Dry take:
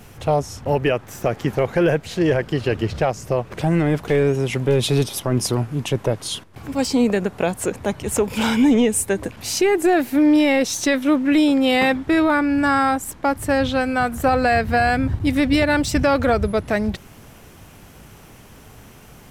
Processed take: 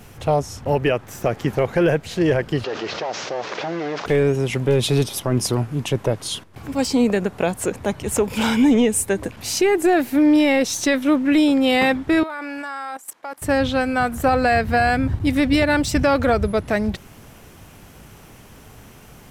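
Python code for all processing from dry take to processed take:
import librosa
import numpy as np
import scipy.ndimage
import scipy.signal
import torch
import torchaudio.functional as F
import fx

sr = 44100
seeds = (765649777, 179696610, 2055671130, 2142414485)

y = fx.chain(x, sr, fx.delta_mod(bps=32000, step_db=-39.5),
    fx.highpass(hz=480.0, slope=12),
    fx.env_flatten(amount_pct=70), at=(2.64, 4.06))
y = fx.chain(y, sr, fx.highpass(hz=570.0, slope=12),
    fx.level_steps(step_db=15), at=(12.23, 13.42))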